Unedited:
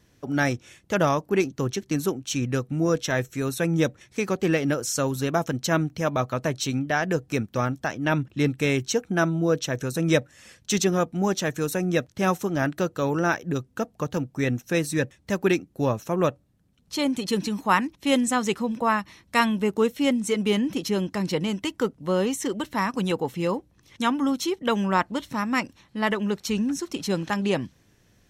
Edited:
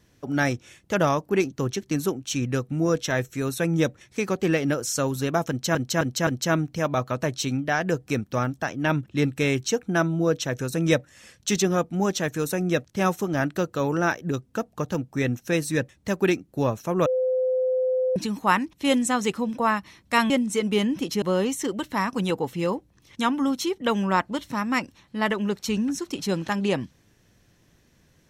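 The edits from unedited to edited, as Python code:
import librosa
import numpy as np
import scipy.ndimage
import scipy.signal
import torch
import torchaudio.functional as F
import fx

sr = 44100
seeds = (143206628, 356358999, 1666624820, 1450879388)

y = fx.edit(x, sr, fx.repeat(start_s=5.49, length_s=0.26, count=4),
    fx.bleep(start_s=16.28, length_s=1.1, hz=513.0, db=-20.0),
    fx.cut(start_s=19.52, length_s=0.52),
    fx.cut(start_s=20.96, length_s=1.07), tone=tone)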